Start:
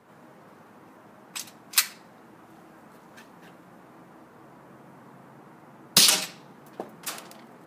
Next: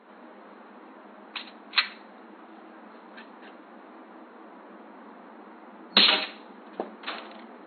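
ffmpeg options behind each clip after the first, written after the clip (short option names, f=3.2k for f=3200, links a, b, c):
-af "afftfilt=real='re*between(b*sr/4096,190,4300)':imag='im*between(b*sr/4096,190,4300)':win_size=4096:overlap=0.75,volume=3.5dB"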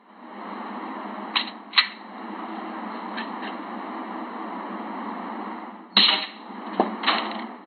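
-af "aecho=1:1:1:0.48,dynaudnorm=f=140:g=5:m=15dB,volume=-1dB"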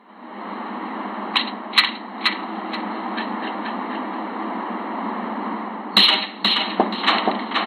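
-filter_complex "[0:a]acontrast=27,asplit=2[a][b];[b]adelay=478,lowpass=f=3.9k:p=1,volume=-3dB,asplit=2[c][d];[d]adelay=478,lowpass=f=3.9k:p=1,volume=0.3,asplit=2[e][f];[f]adelay=478,lowpass=f=3.9k:p=1,volume=0.3,asplit=2[g][h];[h]adelay=478,lowpass=f=3.9k:p=1,volume=0.3[i];[a][c][e][g][i]amix=inputs=5:normalize=0,volume=-1dB"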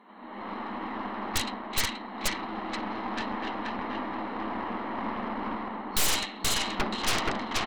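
-af "aeval=exprs='0.891*(cos(1*acos(clip(val(0)/0.891,-1,1)))-cos(1*PI/2))+0.398*(cos(4*acos(clip(val(0)/0.891,-1,1)))-cos(4*PI/2))+0.251*(cos(7*acos(clip(val(0)/0.891,-1,1)))-cos(7*PI/2))':c=same,asoftclip=type=hard:threshold=-13dB,volume=-5.5dB"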